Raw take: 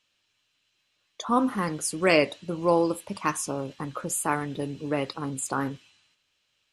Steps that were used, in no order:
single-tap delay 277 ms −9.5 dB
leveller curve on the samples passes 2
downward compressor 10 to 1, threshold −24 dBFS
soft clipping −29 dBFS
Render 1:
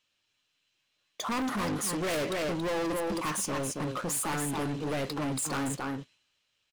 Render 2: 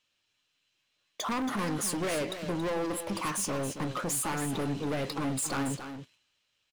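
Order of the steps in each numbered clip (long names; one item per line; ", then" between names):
leveller curve on the samples, then single-tap delay, then soft clipping, then downward compressor
downward compressor, then leveller curve on the samples, then soft clipping, then single-tap delay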